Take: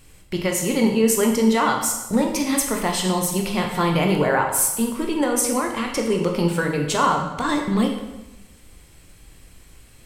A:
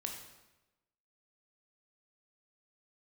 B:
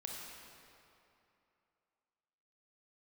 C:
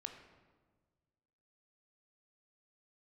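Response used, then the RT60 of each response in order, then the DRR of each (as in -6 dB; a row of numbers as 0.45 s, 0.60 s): A; 1.0 s, 2.8 s, 1.5 s; 1.5 dB, -2.0 dB, 4.5 dB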